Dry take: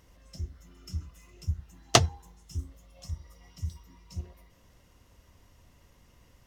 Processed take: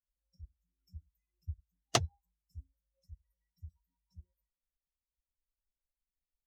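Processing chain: per-bin expansion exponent 2; gain -8 dB

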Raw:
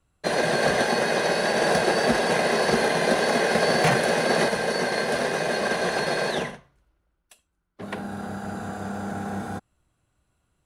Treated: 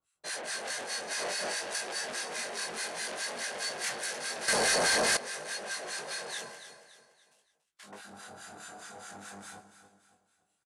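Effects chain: 6.38–7.98 switching dead time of 0.082 ms; harmonic tremolo 4.8 Hz, depth 100%, crossover 1100 Hz; dynamic EQ 3200 Hz, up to -7 dB, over -47 dBFS, Q 1.4; feedback echo 0.284 s, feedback 39%, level -12.5 dB; chorus 0.52 Hz, delay 19 ms, depth 4.2 ms; soft clip -31 dBFS, distortion -8 dB; tilt +4.5 dB/oct; 4.48–5.17 sample leveller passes 5; LPF 9700 Hz 24 dB/oct; 1.11–1.59 fast leveller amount 100%; gain -3.5 dB

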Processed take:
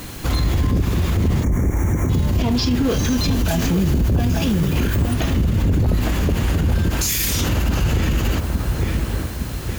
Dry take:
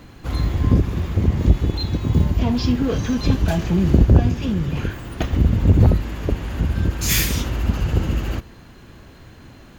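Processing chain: high shelf 3900 Hz +8 dB; requantised 8-bit, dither triangular; 1.43–2.09 spectral delete 2400–5500 Hz; 2.89–4.96 high shelf 9000 Hz +7 dB; dark delay 0.861 s, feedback 45%, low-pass 1800 Hz, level -9 dB; limiter -19.5 dBFS, peak gain reduction 18 dB; gain +8.5 dB

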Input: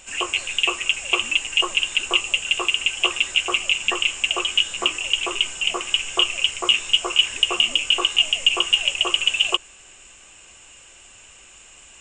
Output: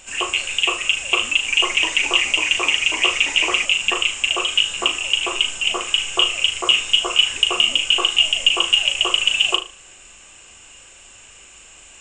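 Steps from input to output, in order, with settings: flutter echo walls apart 6.5 m, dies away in 0.31 s; 1.31–3.65 echoes that change speed 0.167 s, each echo -2 st, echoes 3, each echo -6 dB; gain +1.5 dB

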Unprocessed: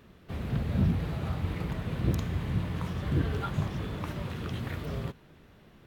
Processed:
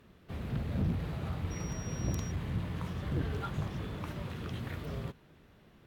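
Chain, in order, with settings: one-sided clip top -26.5 dBFS; 1.5–2.3 whine 5700 Hz -44 dBFS; gain -4 dB

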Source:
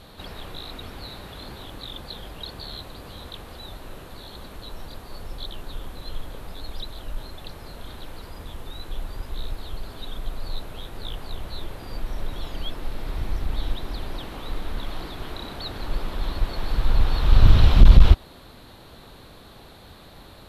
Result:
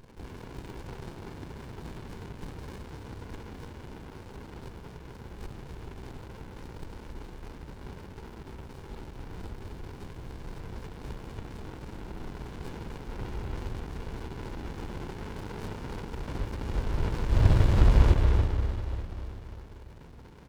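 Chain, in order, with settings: HPF 220 Hz 6 dB/oct; high shelf 3600 Hz -7.5 dB; comb 2.1 ms, depth 86%; in parallel at -8.5 dB: sample gate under -39.5 dBFS; on the sum: harmoniser -12 st -10 dB, +3 st -3 dB, +5 st -16 dB; on a send: echo 0.282 s -8.5 dB; on the sum: spring tank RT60 3.6 s, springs 31/49 ms, chirp 65 ms, DRR 2 dB; running maximum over 65 samples; gain -5 dB

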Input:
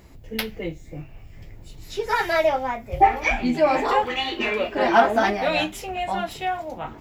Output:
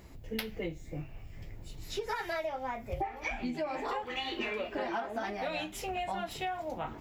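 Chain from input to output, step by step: compressor 16:1, threshold -28 dBFS, peak gain reduction 19.5 dB; gain -3.5 dB

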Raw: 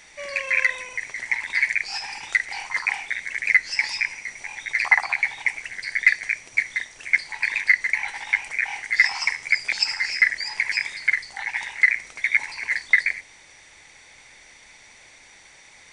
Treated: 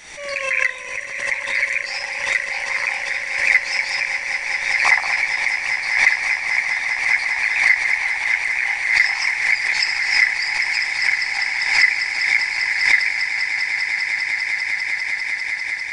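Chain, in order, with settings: swelling echo 0.199 s, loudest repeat 8, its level -10.5 dB; backwards sustainer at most 58 dB/s

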